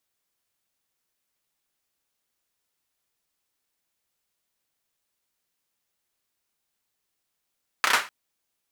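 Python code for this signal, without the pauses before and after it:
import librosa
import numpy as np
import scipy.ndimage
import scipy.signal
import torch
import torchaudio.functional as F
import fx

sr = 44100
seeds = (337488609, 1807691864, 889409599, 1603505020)

y = fx.drum_clap(sr, seeds[0], length_s=0.25, bursts=4, spacing_ms=31, hz=1400.0, decay_s=0.29)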